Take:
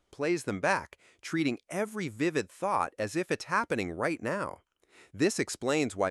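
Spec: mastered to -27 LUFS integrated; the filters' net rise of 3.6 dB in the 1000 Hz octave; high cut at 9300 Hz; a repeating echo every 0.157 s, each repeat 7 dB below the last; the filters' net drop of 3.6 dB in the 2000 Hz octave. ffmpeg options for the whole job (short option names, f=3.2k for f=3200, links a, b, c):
-af "lowpass=9.3k,equalizer=f=1k:t=o:g=6,equalizer=f=2k:t=o:g=-7,aecho=1:1:157|314|471|628|785:0.447|0.201|0.0905|0.0407|0.0183,volume=2.5dB"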